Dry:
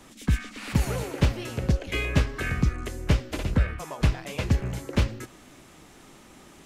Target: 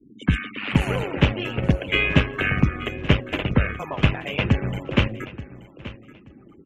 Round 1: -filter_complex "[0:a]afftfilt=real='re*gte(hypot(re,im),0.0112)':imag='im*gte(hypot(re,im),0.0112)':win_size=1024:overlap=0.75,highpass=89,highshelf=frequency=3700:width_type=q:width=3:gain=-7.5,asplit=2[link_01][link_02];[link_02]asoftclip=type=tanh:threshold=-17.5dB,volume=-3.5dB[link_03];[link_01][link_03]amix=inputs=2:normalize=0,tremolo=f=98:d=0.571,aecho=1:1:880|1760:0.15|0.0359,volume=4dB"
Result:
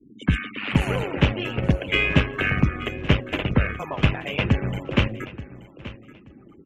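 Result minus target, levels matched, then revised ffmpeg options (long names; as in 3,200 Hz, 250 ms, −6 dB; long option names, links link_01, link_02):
soft clipping: distortion +11 dB
-filter_complex "[0:a]afftfilt=real='re*gte(hypot(re,im),0.0112)':imag='im*gte(hypot(re,im),0.0112)':win_size=1024:overlap=0.75,highpass=89,highshelf=frequency=3700:width_type=q:width=3:gain=-7.5,asplit=2[link_01][link_02];[link_02]asoftclip=type=tanh:threshold=-9.5dB,volume=-3.5dB[link_03];[link_01][link_03]amix=inputs=2:normalize=0,tremolo=f=98:d=0.571,aecho=1:1:880|1760:0.15|0.0359,volume=4dB"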